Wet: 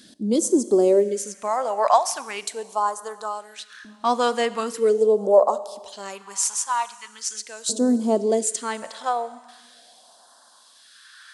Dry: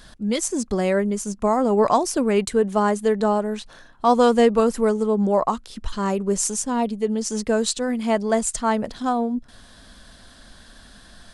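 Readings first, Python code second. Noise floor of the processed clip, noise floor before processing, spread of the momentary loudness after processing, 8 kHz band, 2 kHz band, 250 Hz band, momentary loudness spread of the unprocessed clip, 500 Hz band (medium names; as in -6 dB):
-53 dBFS, -49 dBFS, 15 LU, +1.0 dB, -3.0 dB, -4.5 dB, 8 LU, -0.5 dB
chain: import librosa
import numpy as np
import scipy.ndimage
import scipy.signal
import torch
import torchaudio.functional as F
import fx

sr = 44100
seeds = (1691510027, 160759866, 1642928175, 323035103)

y = fx.rev_schroeder(x, sr, rt60_s=2.1, comb_ms=29, drr_db=15.0)
y = fx.filter_lfo_highpass(y, sr, shape='saw_up', hz=0.26, low_hz=260.0, high_hz=1600.0, q=2.9)
y = fx.phaser_stages(y, sr, stages=2, low_hz=320.0, high_hz=2200.0, hz=0.41, feedback_pct=25)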